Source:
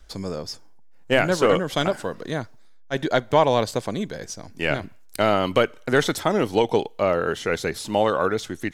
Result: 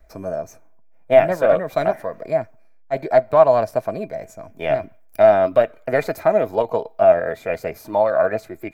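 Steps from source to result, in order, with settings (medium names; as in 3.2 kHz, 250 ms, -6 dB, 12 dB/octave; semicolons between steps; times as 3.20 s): formant shift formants +3 st; high-order bell 5.1 kHz -11 dB 2.3 oct; small resonant body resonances 650/2400 Hz, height 17 dB, ringing for 70 ms; trim -2.5 dB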